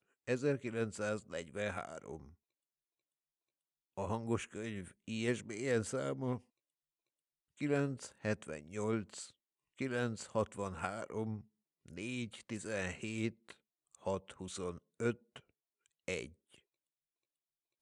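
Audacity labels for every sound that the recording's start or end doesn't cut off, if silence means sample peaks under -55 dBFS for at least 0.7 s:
3.980000	6.410000	sound
7.580000	16.580000	sound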